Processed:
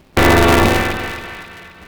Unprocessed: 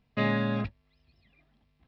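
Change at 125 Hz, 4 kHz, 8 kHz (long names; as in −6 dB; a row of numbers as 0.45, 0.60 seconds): +15.0 dB, +22.0 dB, can't be measured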